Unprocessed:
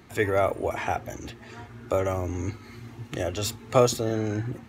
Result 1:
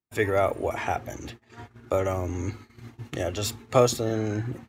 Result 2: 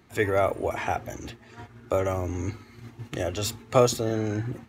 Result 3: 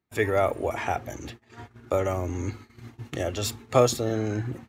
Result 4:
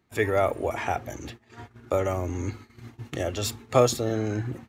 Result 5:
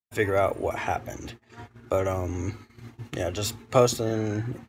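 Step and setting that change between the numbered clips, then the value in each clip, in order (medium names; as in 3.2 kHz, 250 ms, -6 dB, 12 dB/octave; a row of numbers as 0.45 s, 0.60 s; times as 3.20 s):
gate, range: -43 dB, -6 dB, -31 dB, -18 dB, -56 dB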